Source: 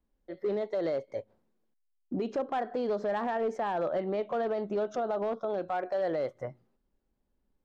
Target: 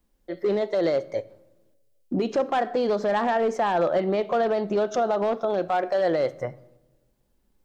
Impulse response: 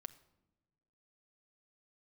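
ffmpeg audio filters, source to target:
-filter_complex "[0:a]asplit=2[link_01][link_02];[1:a]atrim=start_sample=2205,highshelf=frequency=2500:gain=10[link_03];[link_02][link_03]afir=irnorm=-1:irlink=0,volume=8dB[link_04];[link_01][link_04]amix=inputs=2:normalize=0"

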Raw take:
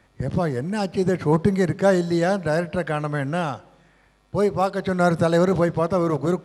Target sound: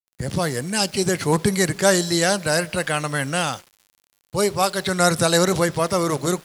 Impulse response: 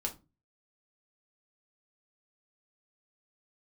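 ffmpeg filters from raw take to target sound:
-af "crystalizer=i=6.5:c=0,aeval=exprs='val(0)*gte(abs(val(0)),0.00891)':channel_layout=same,adynamicequalizer=threshold=0.0224:dfrequency=1600:dqfactor=0.7:tfrequency=1600:tqfactor=0.7:attack=5:release=100:ratio=0.375:range=1.5:mode=boostabove:tftype=highshelf,volume=-1.5dB"

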